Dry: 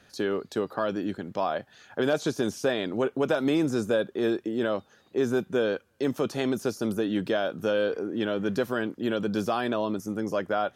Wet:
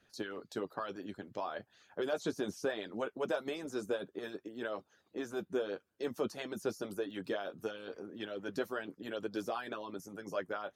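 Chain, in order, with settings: 6.97–7.43 s: crackle 16 per s -39 dBFS; flange 0.64 Hz, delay 8.8 ms, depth 2.1 ms, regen -45%; harmonic-percussive split harmonic -17 dB; trim -3 dB

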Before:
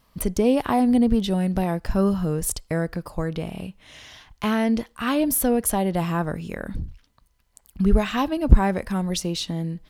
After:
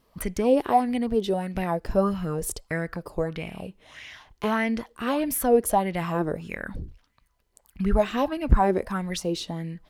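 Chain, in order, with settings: 0.60–1.55 s: bass shelf 230 Hz -7 dB; sweeping bell 1.6 Hz 350–2400 Hz +14 dB; trim -5.5 dB

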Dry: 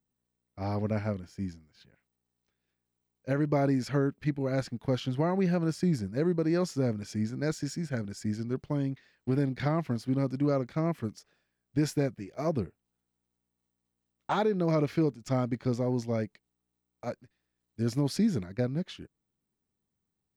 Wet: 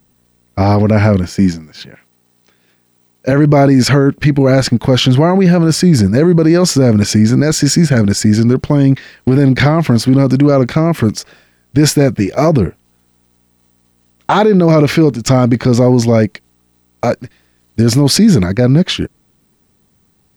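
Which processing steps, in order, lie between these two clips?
1.29–3.32 s: high-pass 130 Hz 12 dB/octave; loudness maximiser +28.5 dB; trim -1 dB

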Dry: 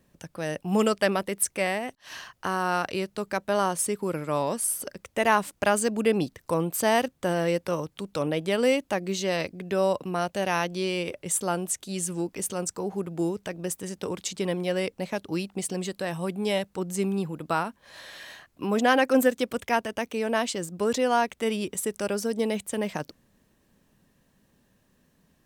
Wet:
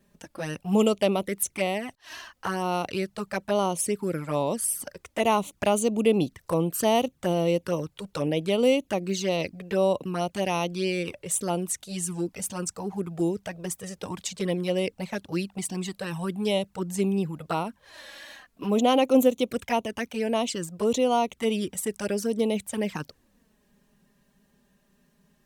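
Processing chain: touch-sensitive flanger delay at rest 5.1 ms, full sweep at -22.5 dBFS; trim +2.5 dB

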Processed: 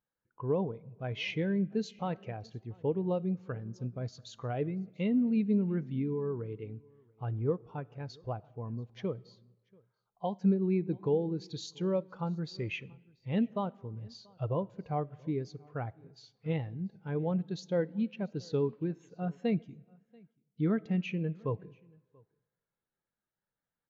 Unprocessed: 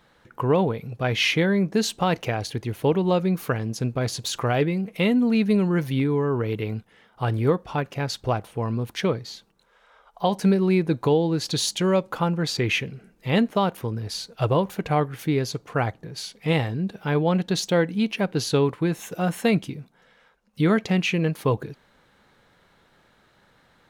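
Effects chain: resampled via 16 kHz; algorithmic reverb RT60 1.8 s, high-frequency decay 0.65×, pre-delay 25 ms, DRR 16 dB; vibrato 7 Hz 23 cents; on a send: delay 685 ms -19 dB; on the sum: spectral contrast expander 1.5:1; trim -8.5 dB

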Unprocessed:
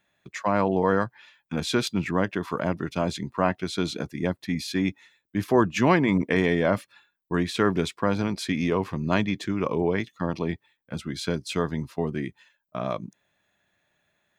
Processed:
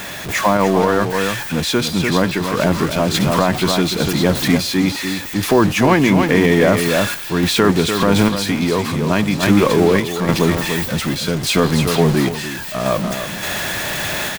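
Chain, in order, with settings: jump at every zero crossing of -28 dBFS; delay 293 ms -7 dB; random-step tremolo 3.5 Hz; repeats whose band climbs or falls 462 ms, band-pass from 3.6 kHz, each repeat 0.7 oct, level -9 dB; loudness maximiser +12.5 dB; trim -1 dB

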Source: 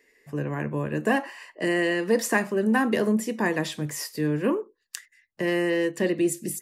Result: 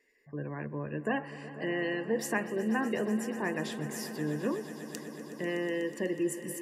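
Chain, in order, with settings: spectral gate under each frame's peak -30 dB strong; echo with a slow build-up 123 ms, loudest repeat 5, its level -17.5 dB; trim -8.5 dB

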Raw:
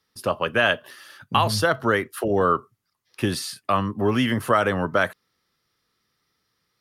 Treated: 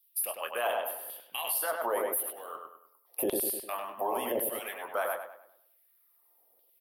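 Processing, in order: doubling 25 ms -6.5 dB; in parallel at +2 dB: compression, threshold -29 dBFS, peak gain reduction 15 dB; on the sum: FFT filter 710 Hz 0 dB, 1.4 kHz -25 dB, 2.6 kHz -18 dB, 4.2 kHz -22 dB, 6.4 kHz -24 dB, 12 kHz +12 dB; LFO high-pass saw down 0.91 Hz 530–3400 Hz; harmonic-percussive split harmonic -11 dB; on a send: filtered feedback delay 100 ms, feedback 40%, low-pass 4.1 kHz, level -4 dB; on the sum: peak limiter -24 dBFS, peak gain reduction 11 dB; bass shelf 160 Hz -3.5 dB; trim +3 dB

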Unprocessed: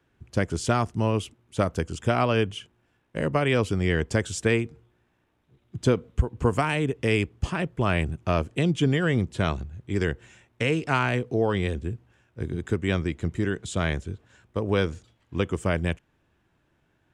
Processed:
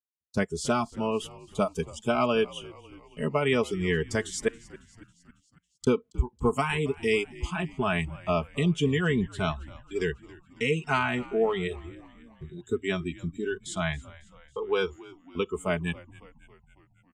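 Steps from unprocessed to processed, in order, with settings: spectral noise reduction 22 dB; gate -46 dBFS, range -30 dB; comb 4.7 ms, depth 60%; 4.48–5.87 s: inverted gate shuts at -25 dBFS, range -28 dB; frequency-shifting echo 275 ms, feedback 60%, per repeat -71 Hz, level -20.5 dB; trim -2.5 dB

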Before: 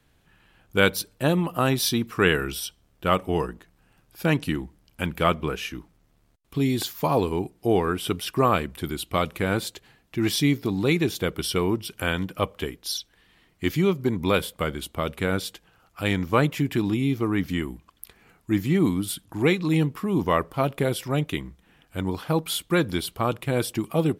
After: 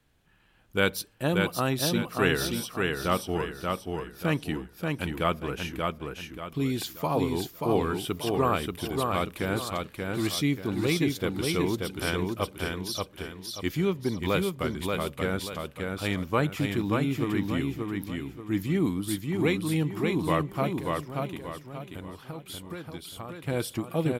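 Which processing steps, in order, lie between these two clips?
20.71–23.44 s: compression 4:1, threshold -34 dBFS, peak gain reduction 14.5 dB; feedback delay 583 ms, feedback 36%, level -3.5 dB; trim -5 dB

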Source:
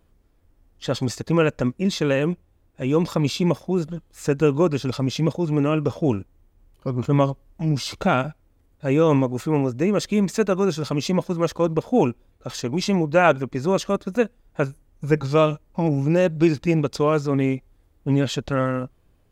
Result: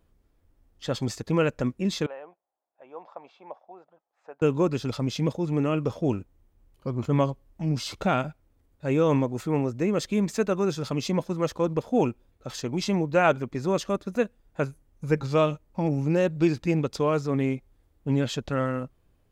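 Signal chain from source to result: 2.06–4.42 s: ladder band-pass 830 Hz, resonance 60%; trim -4.5 dB

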